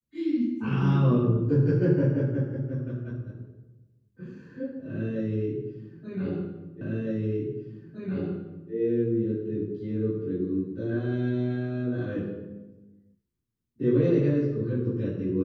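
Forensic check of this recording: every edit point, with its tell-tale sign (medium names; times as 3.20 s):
6.81 s: repeat of the last 1.91 s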